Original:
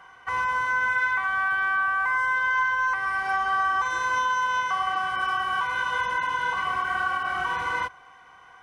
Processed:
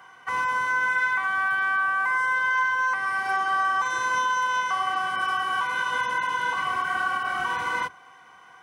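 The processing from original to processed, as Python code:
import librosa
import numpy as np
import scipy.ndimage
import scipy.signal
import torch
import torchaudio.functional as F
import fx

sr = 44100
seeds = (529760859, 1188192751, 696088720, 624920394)

y = fx.octave_divider(x, sr, octaves=1, level_db=-5.0)
y = scipy.signal.sosfilt(scipy.signal.butter(2, 120.0, 'highpass', fs=sr, output='sos'), y)
y = fx.high_shelf(y, sr, hz=7200.0, db=8.5)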